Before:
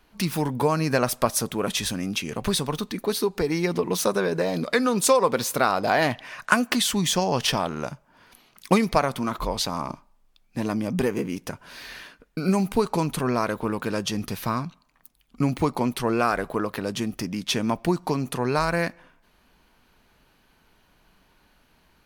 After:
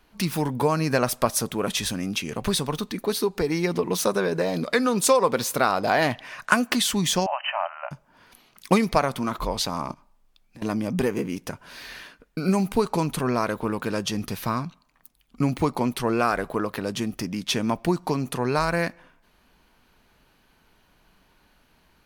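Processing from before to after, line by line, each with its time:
7.26–7.91 brick-wall FIR band-pass 560–3100 Hz
9.92–10.62 compressor, threshold -43 dBFS

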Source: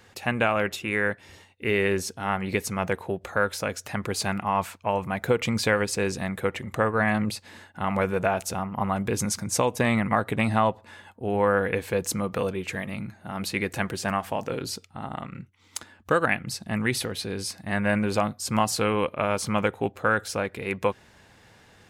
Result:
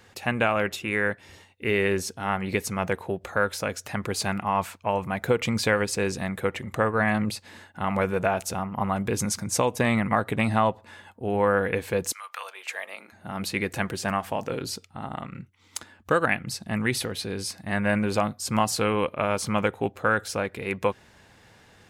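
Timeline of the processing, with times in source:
12.11–13.12 HPF 1400 Hz -> 360 Hz 24 dB/oct

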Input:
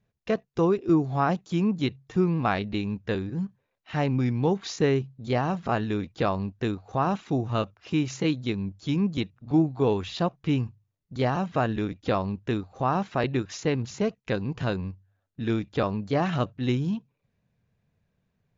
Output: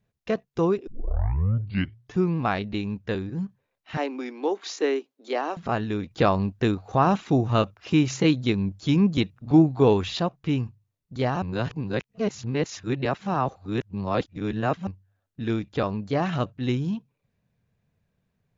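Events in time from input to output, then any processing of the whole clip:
0.87 tape start 1.30 s
3.97–5.57 steep high-pass 280 Hz 48 dB/oct
6.11–10.2 gain +5 dB
11.42–14.87 reverse

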